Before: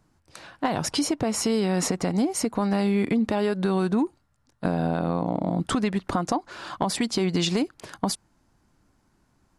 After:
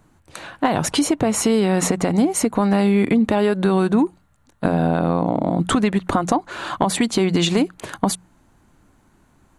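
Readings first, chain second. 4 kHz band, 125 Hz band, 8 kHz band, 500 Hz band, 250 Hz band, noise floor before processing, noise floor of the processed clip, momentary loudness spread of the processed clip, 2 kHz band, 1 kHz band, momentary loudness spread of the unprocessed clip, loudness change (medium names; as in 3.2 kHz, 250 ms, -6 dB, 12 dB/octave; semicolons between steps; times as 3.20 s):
+4.0 dB, +6.0 dB, +6.0 dB, +6.5 dB, +6.5 dB, -67 dBFS, -58 dBFS, 7 LU, +7.0 dB, +6.5 dB, 6 LU, +6.0 dB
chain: peaking EQ 5.1 kHz -11 dB 0.31 oct; hum notches 60/120/180 Hz; in parallel at -2.5 dB: compression, threshold -30 dBFS, peak gain reduction 10.5 dB; on the sum: trim +4.5 dB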